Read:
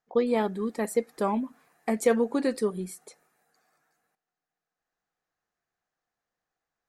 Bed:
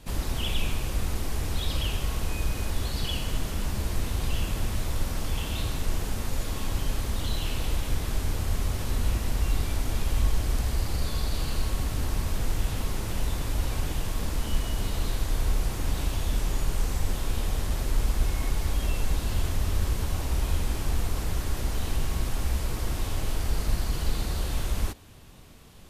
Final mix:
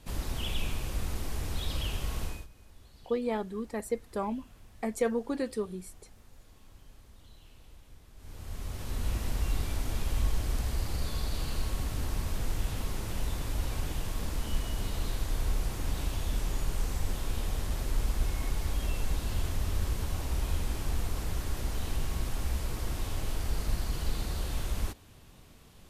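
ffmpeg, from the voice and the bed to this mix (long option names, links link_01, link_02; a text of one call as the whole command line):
ffmpeg -i stem1.wav -i stem2.wav -filter_complex "[0:a]adelay=2950,volume=-6dB[link_01];[1:a]volume=16.5dB,afade=type=out:start_time=2.23:duration=0.24:silence=0.0891251,afade=type=in:start_time=8.16:duration=1.06:silence=0.0841395[link_02];[link_01][link_02]amix=inputs=2:normalize=0" out.wav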